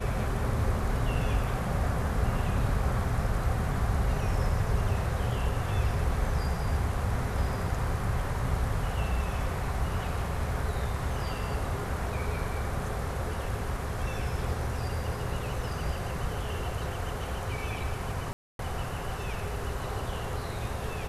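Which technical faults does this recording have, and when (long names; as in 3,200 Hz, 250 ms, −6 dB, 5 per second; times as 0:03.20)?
0:18.33–0:18.59: drop-out 262 ms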